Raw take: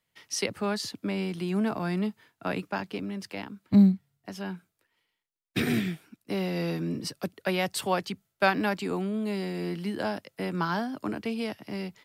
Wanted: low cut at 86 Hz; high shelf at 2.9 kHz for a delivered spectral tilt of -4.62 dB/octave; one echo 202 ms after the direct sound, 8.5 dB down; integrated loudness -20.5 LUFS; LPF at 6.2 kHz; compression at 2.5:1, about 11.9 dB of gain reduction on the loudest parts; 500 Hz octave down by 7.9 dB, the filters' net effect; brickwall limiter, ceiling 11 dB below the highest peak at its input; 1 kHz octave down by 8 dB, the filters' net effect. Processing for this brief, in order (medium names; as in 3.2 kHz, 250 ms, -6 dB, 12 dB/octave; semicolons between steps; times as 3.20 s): high-pass 86 Hz; low-pass 6.2 kHz; peaking EQ 500 Hz -9 dB; peaking EQ 1 kHz -9 dB; treble shelf 2.9 kHz +8.5 dB; compression 2.5:1, threshold -34 dBFS; peak limiter -28 dBFS; delay 202 ms -8.5 dB; trim +17.5 dB